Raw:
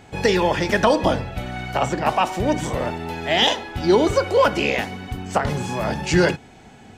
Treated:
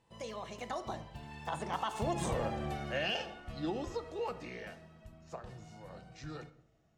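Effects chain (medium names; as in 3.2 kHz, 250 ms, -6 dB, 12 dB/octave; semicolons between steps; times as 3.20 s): Doppler pass-by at 2.34 s, 55 m/s, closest 10 m; graphic EQ 250/2000/8000 Hz -10/-6/+4 dB; simulated room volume 2600 m³, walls furnished, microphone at 0.7 m; compression 6:1, threshold -31 dBFS, peak gain reduction 9 dB; treble shelf 5 kHz -6.5 dB; small resonant body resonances 230/1800/2800 Hz, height 10 dB, ringing for 90 ms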